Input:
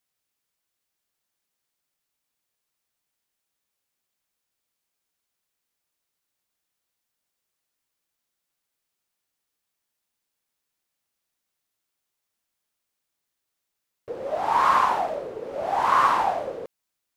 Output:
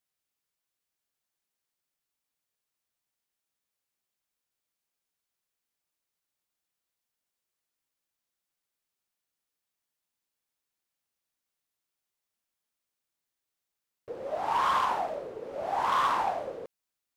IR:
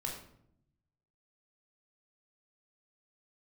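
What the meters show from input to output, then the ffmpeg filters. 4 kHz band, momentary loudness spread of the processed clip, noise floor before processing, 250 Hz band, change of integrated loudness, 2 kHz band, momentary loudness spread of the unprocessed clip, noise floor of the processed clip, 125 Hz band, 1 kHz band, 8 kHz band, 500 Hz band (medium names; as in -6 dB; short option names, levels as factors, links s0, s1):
-2.0 dB, 16 LU, -82 dBFS, -6.0 dB, -6.5 dB, -6.5 dB, 16 LU, under -85 dBFS, -5.5 dB, -6.5 dB, no reading, -5.5 dB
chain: -af "asoftclip=type=hard:threshold=0.158,volume=0.531"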